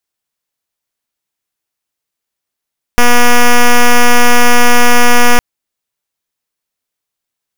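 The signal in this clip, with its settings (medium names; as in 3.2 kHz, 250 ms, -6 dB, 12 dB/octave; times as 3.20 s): pulse 242 Hz, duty 6% -4 dBFS 2.41 s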